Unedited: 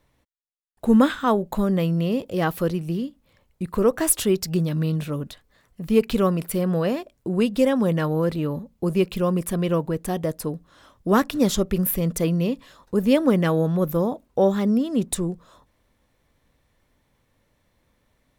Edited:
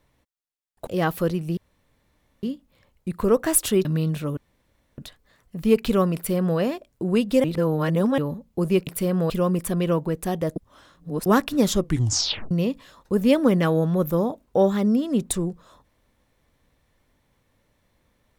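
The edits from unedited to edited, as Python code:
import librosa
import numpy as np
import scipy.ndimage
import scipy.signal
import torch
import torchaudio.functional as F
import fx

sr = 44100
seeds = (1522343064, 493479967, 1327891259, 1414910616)

y = fx.edit(x, sr, fx.cut(start_s=0.87, length_s=1.4),
    fx.insert_room_tone(at_s=2.97, length_s=0.86),
    fx.cut(start_s=4.39, length_s=0.32),
    fx.insert_room_tone(at_s=5.23, length_s=0.61),
    fx.duplicate(start_s=6.4, length_s=0.43, to_s=9.12),
    fx.reverse_span(start_s=7.69, length_s=0.74),
    fx.reverse_span(start_s=10.38, length_s=0.7),
    fx.tape_stop(start_s=11.6, length_s=0.73), tone=tone)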